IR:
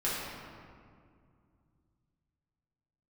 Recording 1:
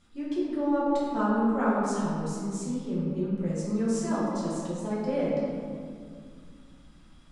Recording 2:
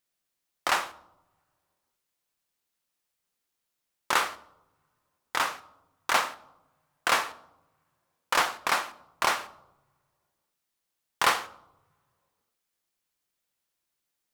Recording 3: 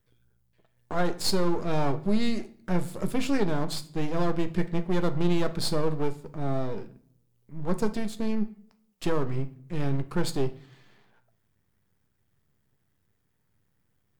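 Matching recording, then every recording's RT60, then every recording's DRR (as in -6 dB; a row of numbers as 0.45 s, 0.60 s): 1; 2.2 s, no single decay rate, 0.55 s; -9.0 dB, 12.5 dB, 9.5 dB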